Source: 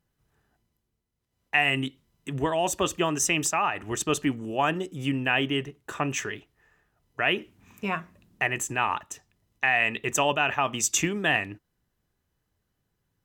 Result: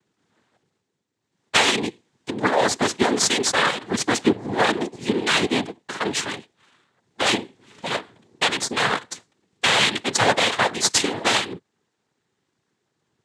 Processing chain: minimum comb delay 3.1 ms; noise vocoder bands 6; gain +8.5 dB

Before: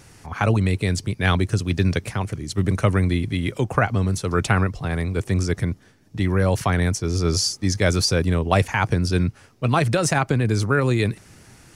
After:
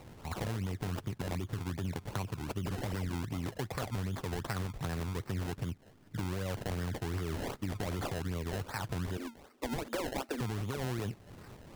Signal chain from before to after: 2.64–3.14 painted sound fall 1400–7800 Hz -31 dBFS; 9.17–10.41 Chebyshev high-pass 230 Hz, order 10; limiter -14.5 dBFS, peak gain reduction 10 dB; compressor 3:1, threshold -33 dBFS, peak gain reduction 11 dB; decimation with a swept rate 26×, swing 100% 2.6 Hz; gain -3 dB

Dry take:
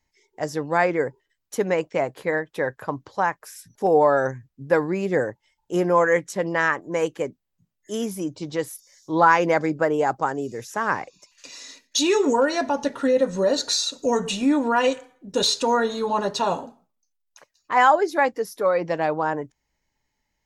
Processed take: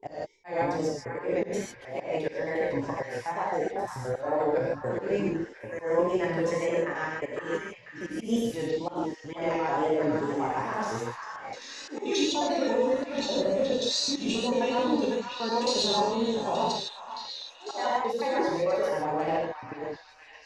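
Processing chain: slices in reverse order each 88 ms, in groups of 5; LPF 5400 Hz 12 dB/oct; reverse; compressor 6:1, threshold -25 dBFS, peak gain reduction 13.5 dB; reverse; bell 1400 Hz -9.5 dB 0.83 oct; non-linear reverb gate 0.18 s flat, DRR -5 dB; wow and flutter 60 cents; auto swell 0.148 s; delay with a stepping band-pass 0.499 s, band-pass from 1400 Hz, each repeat 0.7 oct, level -4 dB; gain -3 dB

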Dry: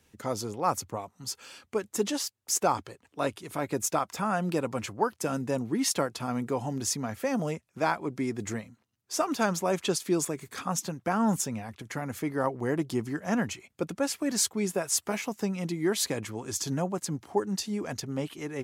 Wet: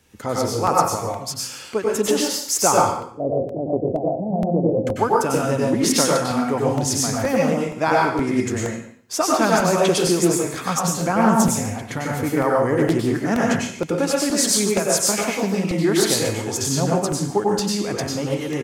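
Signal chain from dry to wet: 2.85–4.87 steep low-pass 710 Hz 72 dB/oct; echo 0.144 s -15.5 dB; plate-style reverb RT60 0.51 s, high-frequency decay 0.95×, pre-delay 85 ms, DRR -3 dB; crackling interface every 0.47 s, samples 64, repeat, from 0.67; Doppler distortion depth 0.14 ms; gain +6 dB

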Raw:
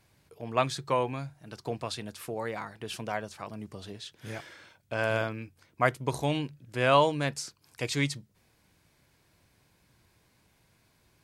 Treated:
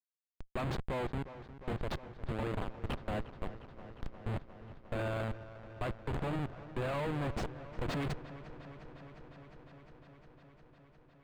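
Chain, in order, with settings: Schmitt trigger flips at -33 dBFS; dark delay 0.355 s, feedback 80%, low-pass 2100 Hz, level -15 dB; slew limiter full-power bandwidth 40 Hz; gain -1 dB

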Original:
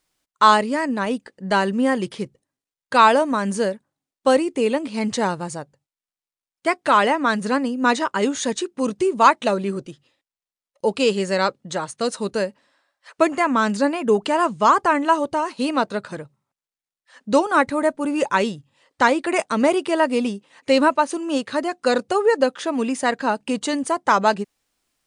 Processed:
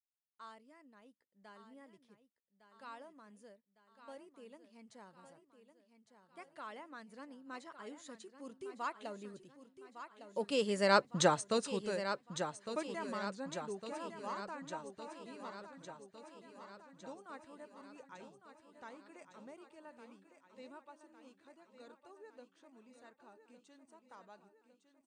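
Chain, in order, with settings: Doppler pass-by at 11.17, 15 m/s, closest 1.8 m; feedback echo 1.157 s, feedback 58%, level -10 dB

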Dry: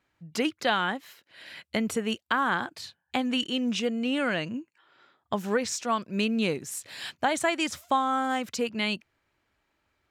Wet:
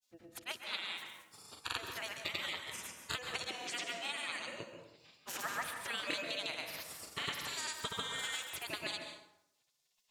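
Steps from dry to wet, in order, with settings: spectral gate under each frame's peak -20 dB weak; compressor, threshold -46 dBFS, peak gain reduction 13.5 dB; grains, pitch spread up and down by 0 st; plate-style reverb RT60 0.82 s, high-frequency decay 0.6×, pre-delay 0.12 s, DRR 5 dB; gain +10.5 dB

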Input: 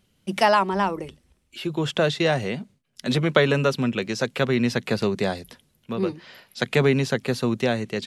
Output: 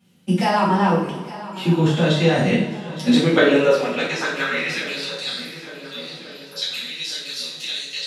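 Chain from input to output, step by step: level quantiser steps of 14 dB; high-pass sweep 170 Hz -> 3900 Hz, 3–5.11; on a send: swung echo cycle 1.438 s, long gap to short 1.5:1, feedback 42%, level -16 dB; on the sum: two-slope reverb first 0.55 s, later 3 s, from -19 dB, DRR -10 dB

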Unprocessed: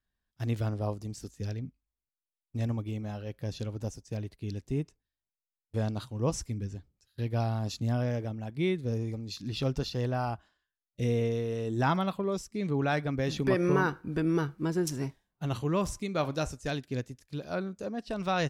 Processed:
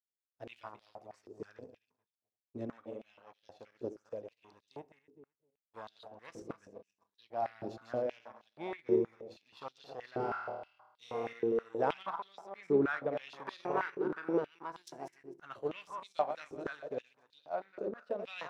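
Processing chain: regenerating reverse delay 0.128 s, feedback 52%, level -7 dB; power-law curve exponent 1.4; tilt -4.5 dB/oct; 10.17–11.33 flutter echo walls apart 4.5 m, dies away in 0.98 s; on a send at -20 dB: reverb RT60 0.55 s, pre-delay 7 ms; on the sum: stepped high-pass 6.3 Hz 380–3700 Hz; gain -5.5 dB

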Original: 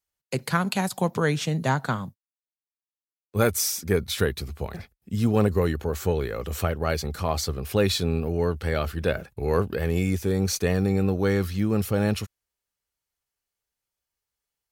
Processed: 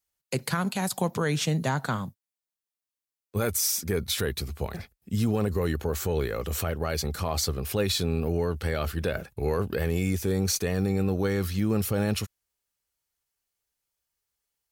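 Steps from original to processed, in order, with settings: high shelf 4900 Hz +4.5 dB; limiter -16 dBFS, peak gain reduction 9.5 dB

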